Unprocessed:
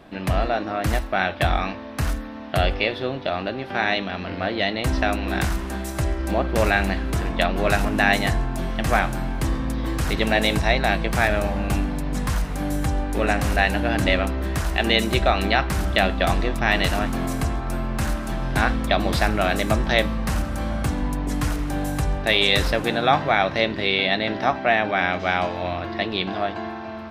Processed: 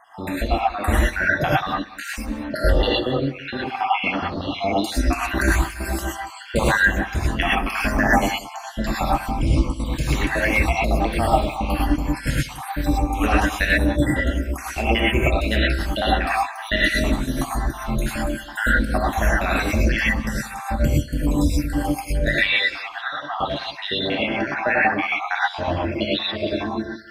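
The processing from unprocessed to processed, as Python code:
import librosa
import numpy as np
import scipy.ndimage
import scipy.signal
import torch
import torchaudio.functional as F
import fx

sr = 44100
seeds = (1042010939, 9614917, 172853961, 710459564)

y = fx.spec_dropout(x, sr, seeds[0], share_pct=74)
y = fx.rider(y, sr, range_db=4, speed_s=2.0)
y = fx.bandpass_q(y, sr, hz=1800.0, q=1.2, at=(22.38, 23.39))
y = y + 10.0 ** (-18.0 / 20.0) * np.pad(y, (int(184 * sr / 1000.0), 0))[:len(y)]
y = fx.rev_gated(y, sr, seeds[1], gate_ms=140, shape='rising', drr_db=-5.5)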